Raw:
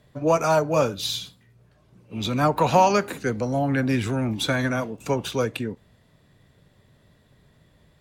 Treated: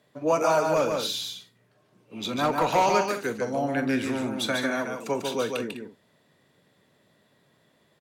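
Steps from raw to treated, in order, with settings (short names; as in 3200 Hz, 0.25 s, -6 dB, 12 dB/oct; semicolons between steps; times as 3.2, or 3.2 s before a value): HPF 230 Hz 12 dB/oct; 0.76–2.86 overloaded stage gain 15 dB; tapped delay 42/145/202 ms -13/-4.5/-13 dB; gain -3 dB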